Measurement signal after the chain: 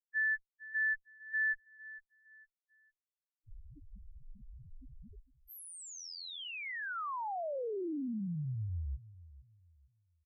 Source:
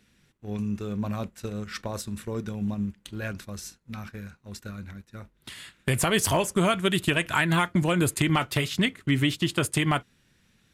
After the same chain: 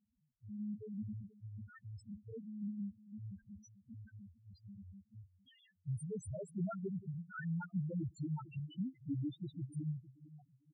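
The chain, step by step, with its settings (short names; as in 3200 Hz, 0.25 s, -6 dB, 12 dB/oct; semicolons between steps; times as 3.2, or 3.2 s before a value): one-sided clip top -22.5 dBFS; feedback echo 0.456 s, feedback 30%, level -17 dB; loudest bins only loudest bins 1; gain -6.5 dB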